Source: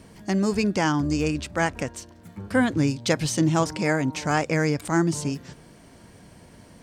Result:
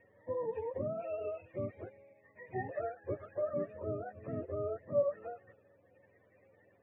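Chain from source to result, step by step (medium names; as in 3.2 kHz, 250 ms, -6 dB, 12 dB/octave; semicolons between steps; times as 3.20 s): spectrum inverted on a logarithmic axis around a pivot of 440 Hz; cascade formant filter e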